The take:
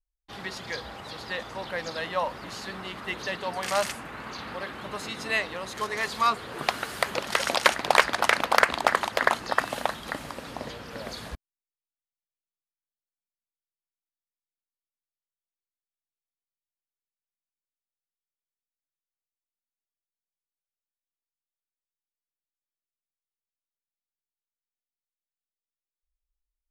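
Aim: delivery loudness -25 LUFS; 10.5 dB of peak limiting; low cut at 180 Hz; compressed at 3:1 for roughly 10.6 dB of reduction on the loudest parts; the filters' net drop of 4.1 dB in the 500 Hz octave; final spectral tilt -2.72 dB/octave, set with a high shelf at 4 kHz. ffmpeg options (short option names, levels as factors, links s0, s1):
-af "highpass=180,equalizer=f=500:t=o:g=-5,highshelf=f=4000:g=-6.5,acompressor=threshold=0.0282:ratio=3,volume=4.47,alimiter=limit=0.335:level=0:latency=1"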